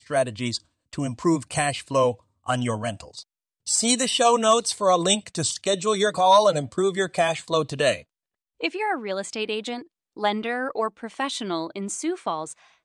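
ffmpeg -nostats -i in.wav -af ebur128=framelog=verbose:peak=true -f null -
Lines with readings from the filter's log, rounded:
Integrated loudness:
  I:         -23.7 LUFS
  Threshold: -34.1 LUFS
Loudness range:
  LRA:         7.9 LU
  Threshold: -43.6 LUFS
  LRA low:   -28.4 LUFS
  LRA high:  -20.5 LUFS
True peak:
  Peak:       -7.1 dBFS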